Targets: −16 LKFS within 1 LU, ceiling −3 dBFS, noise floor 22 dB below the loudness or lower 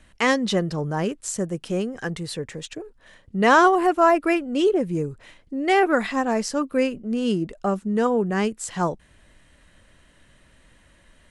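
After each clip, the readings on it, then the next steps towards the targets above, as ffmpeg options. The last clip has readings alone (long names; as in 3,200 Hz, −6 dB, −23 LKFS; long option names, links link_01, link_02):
integrated loudness −22.5 LKFS; sample peak −6.0 dBFS; target loudness −16.0 LKFS
→ -af "volume=6.5dB,alimiter=limit=-3dB:level=0:latency=1"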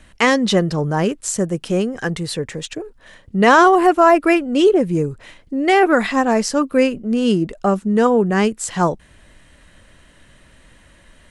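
integrated loudness −16.5 LKFS; sample peak −3.0 dBFS; background noise floor −50 dBFS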